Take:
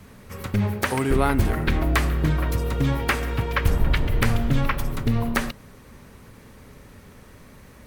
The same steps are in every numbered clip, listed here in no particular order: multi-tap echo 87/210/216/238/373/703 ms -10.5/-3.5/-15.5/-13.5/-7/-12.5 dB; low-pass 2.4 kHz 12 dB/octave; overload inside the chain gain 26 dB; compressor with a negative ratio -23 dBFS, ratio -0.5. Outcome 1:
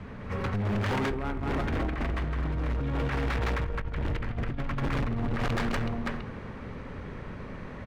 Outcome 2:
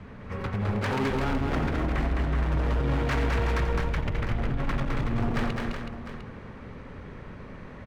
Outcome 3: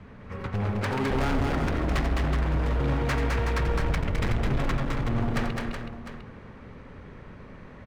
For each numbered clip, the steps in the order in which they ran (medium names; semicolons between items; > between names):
multi-tap echo > compressor with a negative ratio > low-pass > overload inside the chain; low-pass > compressor with a negative ratio > overload inside the chain > multi-tap echo; low-pass > overload inside the chain > compressor with a negative ratio > multi-tap echo